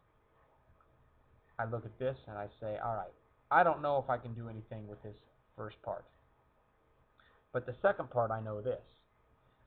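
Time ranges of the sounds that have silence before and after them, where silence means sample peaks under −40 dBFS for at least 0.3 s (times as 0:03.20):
0:01.59–0:03.06
0:03.51–0:05.11
0:05.60–0:05.98
0:07.55–0:08.77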